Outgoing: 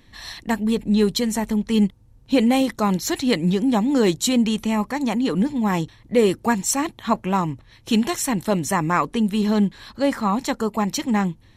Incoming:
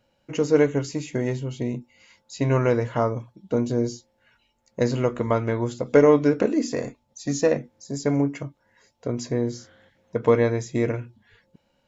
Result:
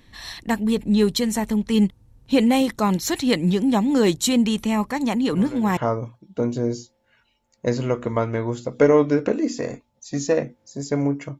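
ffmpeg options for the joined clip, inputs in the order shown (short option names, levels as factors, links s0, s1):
-filter_complex "[1:a]asplit=2[s0][s1];[0:a]apad=whole_dur=11.39,atrim=end=11.39,atrim=end=5.772[s2];[s1]atrim=start=2.908:end=8.53[s3];[s0]atrim=start=2.46:end=2.91,asetpts=PTS-STARTPTS,volume=0.168,afade=t=in:d=0.004:c=hsin,afade=t=out:st=0.446:d=0.004:c=hsin,adelay=5320[s4];[s2][s3]acrossfade=d=0.004:c1=hsin:c2=hsin[s5];[s5][s4]amix=inputs=2:normalize=0"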